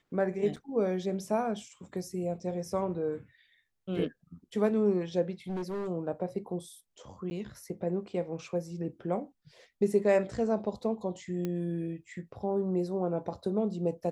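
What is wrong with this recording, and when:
0:00.56–0:00.57: drop-out 6.1 ms
0:05.48–0:05.88: clipping −31.5 dBFS
0:07.30–0:07.31: drop-out 10 ms
0:11.45: click −21 dBFS

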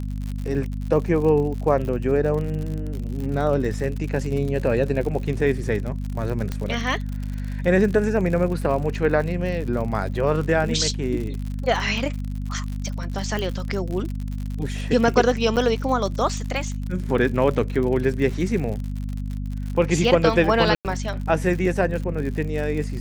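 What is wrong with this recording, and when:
surface crackle 67 per second −29 dBFS
mains hum 50 Hz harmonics 5 −28 dBFS
0:06.52: click −14 dBFS
0:13.39: click −15 dBFS
0:15.56–0:15.57: drop-out 7.8 ms
0:20.75–0:20.85: drop-out 98 ms

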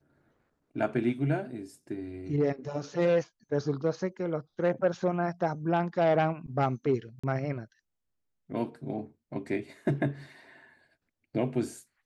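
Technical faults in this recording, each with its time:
0:07.19–0:07.24: drop-out 45 ms

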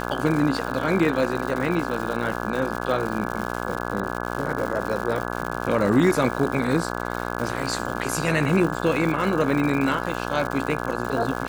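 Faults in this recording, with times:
mains buzz 60 Hz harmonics 28 −29 dBFS
surface crackle 200 per second −28 dBFS

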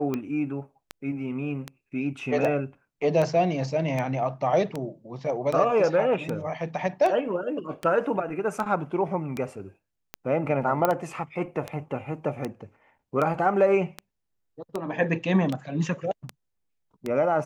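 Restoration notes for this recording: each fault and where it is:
scratch tick 78 rpm −16 dBFS
0:10.85: click −9 dBFS

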